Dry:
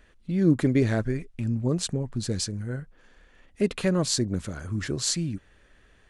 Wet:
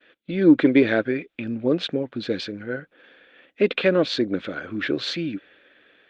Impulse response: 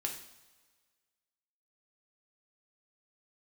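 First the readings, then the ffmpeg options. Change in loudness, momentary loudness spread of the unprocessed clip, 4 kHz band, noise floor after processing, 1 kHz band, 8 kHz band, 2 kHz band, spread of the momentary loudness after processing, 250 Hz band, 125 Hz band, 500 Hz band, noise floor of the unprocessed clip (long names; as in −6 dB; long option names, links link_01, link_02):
+4.0 dB, 11 LU, +3.0 dB, −69 dBFS, +5.0 dB, below −15 dB, +10.0 dB, 14 LU, +5.0 dB, −7.0 dB, +7.5 dB, −59 dBFS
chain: -af "highpass=290,equalizer=frequency=300:width_type=q:width=4:gain=7,equalizer=frequency=520:width_type=q:width=4:gain=6,equalizer=frequency=990:width_type=q:width=4:gain=-6,equalizer=frequency=1500:width_type=q:width=4:gain=6,equalizer=frequency=2400:width_type=q:width=4:gain=7,equalizer=frequency=3500:width_type=q:width=4:gain=9,lowpass=frequency=3800:width=0.5412,lowpass=frequency=3800:width=1.3066,agate=range=-33dB:threshold=-55dB:ratio=3:detection=peak,acontrast=36" -ar 48000 -c:a libopus -b:a 48k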